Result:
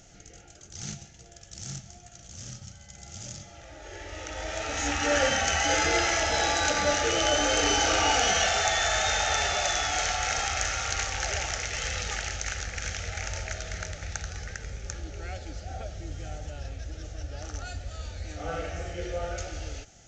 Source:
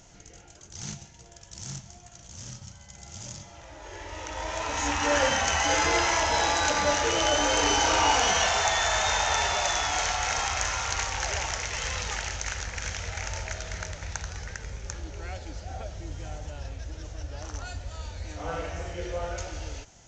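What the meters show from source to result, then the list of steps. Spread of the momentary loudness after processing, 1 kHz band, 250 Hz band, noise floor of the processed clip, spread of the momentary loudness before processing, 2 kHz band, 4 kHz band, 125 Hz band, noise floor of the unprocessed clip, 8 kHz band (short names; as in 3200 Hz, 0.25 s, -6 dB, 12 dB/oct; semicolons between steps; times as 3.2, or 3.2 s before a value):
18 LU, -2.5 dB, 0.0 dB, -51 dBFS, 18 LU, 0.0 dB, 0.0 dB, 0.0 dB, -51 dBFS, 0.0 dB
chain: Butterworth band-stop 1000 Hz, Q 3.5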